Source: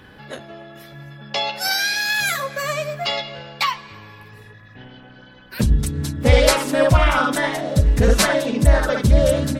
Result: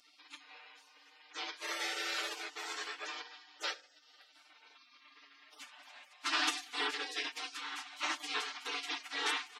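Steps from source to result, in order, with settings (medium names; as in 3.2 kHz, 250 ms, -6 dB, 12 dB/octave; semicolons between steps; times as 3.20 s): steep high-pass 330 Hz 96 dB/octave; spectral gate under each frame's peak -25 dB weak; tilt EQ +3 dB/octave; comb 6.7 ms, depth 82%; upward compressor, threshold -45 dBFS; tape spacing loss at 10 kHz 32 dB; on a send: reverberation RT60 0.55 s, pre-delay 3 ms, DRR 19 dB; on the sum: trim +2.5 dB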